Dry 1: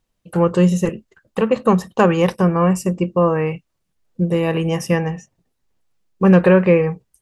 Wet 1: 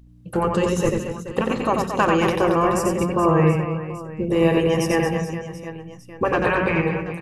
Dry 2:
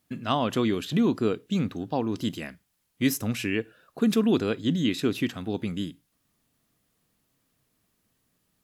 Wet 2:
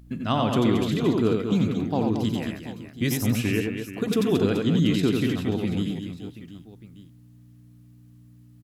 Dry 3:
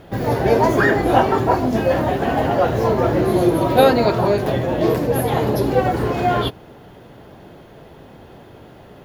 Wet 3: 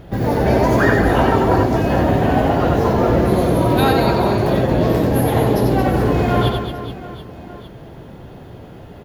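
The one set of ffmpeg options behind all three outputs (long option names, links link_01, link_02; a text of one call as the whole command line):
ffmpeg -i in.wav -filter_complex "[0:a]lowshelf=frequency=240:gain=8,afftfilt=real='re*lt(hypot(re,im),1.58)':imag='im*lt(hypot(re,im),1.58)':win_size=1024:overlap=0.75,aeval=exprs='val(0)+0.00501*(sin(2*PI*60*n/s)+sin(2*PI*2*60*n/s)/2+sin(2*PI*3*60*n/s)/3+sin(2*PI*4*60*n/s)/4+sin(2*PI*5*60*n/s)/5)':channel_layout=same,asplit=2[link_01][link_02];[link_02]aecho=0:1:90|225|427.5|731.2|1187:0.631|0.398|0.251|0.158|0.1[link_03];[link_01][link_03]amix=inputs=2:normalize=0,volume=-1dB" out.wav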